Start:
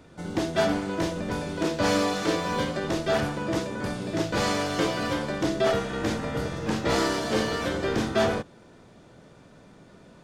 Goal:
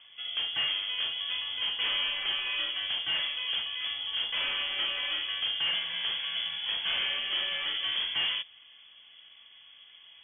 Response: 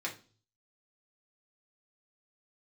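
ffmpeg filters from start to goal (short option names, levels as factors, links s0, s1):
-af "asoftclip=type=tanh:threshold=0.075,lowpass=f=3000:t=q:w=0.5098,lowpass=f=3000:t=q:w=0.6013,lowpass=f=3000:t=q:w=0.9,lowpass=f=3000:t=q:w=2.563,afreqshift=-3500,volume=0.75"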